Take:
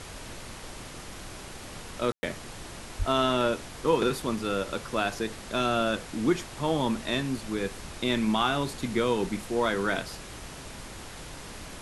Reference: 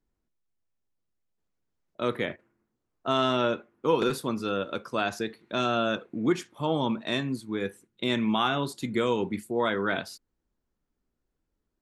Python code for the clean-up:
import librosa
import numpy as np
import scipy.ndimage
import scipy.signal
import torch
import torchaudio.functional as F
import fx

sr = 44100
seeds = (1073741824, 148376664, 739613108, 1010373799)

y = fx.highpass(x, sr, hz=140.0, slope=24, at=(2.98, 3.1), fade=0.02)
y = fx.fix_ambience(y, sr, seeds[0], print_start_s=10.15, print_end_s=10.65, start_s=2.12, end_s=2.23)
y = fx.noise_reduce(y, sr, print_start_s=10.15, print_end_s=10.65, reduce_db=30.0)